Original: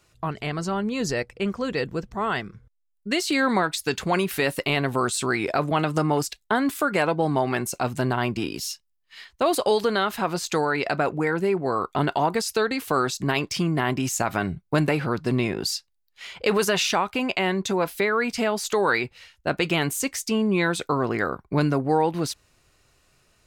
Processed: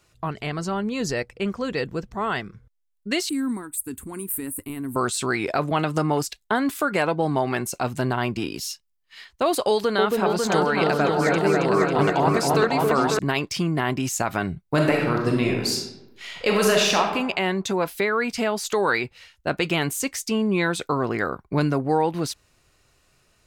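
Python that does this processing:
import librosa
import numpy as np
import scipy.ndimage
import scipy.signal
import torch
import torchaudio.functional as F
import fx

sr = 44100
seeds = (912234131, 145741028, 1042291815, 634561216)

y = fx.curve_eq(x, sr, hz=(100.0, 160.0, 260.0, 610.0, 1000.0, 5800.0, 8500.0), db=(0, -15, 2, -26, -15, -25, 8), at=(3.29, 4.96))
y = fx.echo_opening(y, sr, ms=273, hz=750, octaves=2, feedback_pct=70, wet_db=0, at=(9.71, 13.19))
y = fx.reverb_throw(y, sr, start_s=14.66, length_s=2.34, rt60_s=0.94, drr_db=0.0)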